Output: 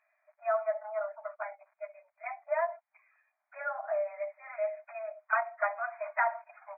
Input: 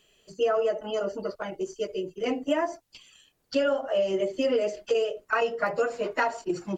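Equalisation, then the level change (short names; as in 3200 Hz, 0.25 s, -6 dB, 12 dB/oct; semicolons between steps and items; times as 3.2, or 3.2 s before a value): brick-wall FIR band-pass 590–2500 Hz; -2.0 dB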